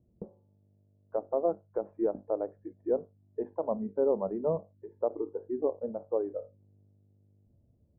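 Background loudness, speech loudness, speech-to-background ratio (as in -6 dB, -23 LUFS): -49.0 LUFS, -33.5 LUFS, 15.5 dB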